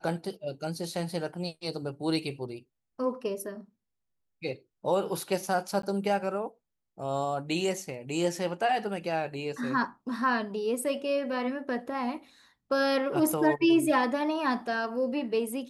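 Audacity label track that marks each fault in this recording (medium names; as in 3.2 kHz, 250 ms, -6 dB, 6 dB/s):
5.820000	5.830000	dropout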